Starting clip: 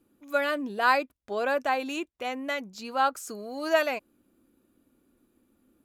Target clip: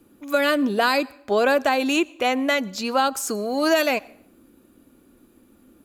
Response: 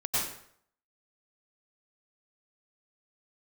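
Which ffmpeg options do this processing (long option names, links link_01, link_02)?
-filter_complex "[0:a]acrossover=split=390|3000[link_01][link_02][link_03];[link_02]acompressor=threshold=-31dB:ratio=6[link_04];[link_01][link_04][link_03]amix=inputs=3:normalize=0,asplit=2[link_05][link_06];[1:a]atrim=start_sample=2205[link_07];[link_06][link_07]afir=irnorm=-1:irlink=0,volume=-32dB[link_08];[link_05][link_08]amix=inputs=2:normalize=0,alimiter=level_in=20dB:limit=-1dB:release=50:level=0:latency=1,volume=-8dB"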